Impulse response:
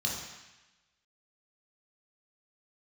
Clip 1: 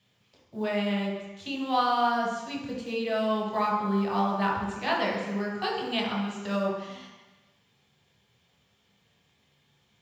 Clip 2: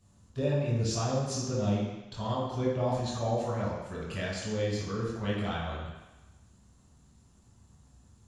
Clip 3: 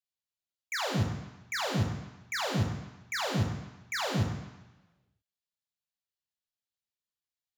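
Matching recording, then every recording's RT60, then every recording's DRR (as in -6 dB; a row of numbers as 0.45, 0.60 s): 1; 1.0, 1.0, 1.0 s; -3.5, -9.0, 2.5 dB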